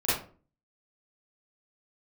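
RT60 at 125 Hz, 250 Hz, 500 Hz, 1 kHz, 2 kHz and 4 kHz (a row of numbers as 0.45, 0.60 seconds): 0.55, 0.55, 0.45, 0.35, 0.30, 0.25 seconds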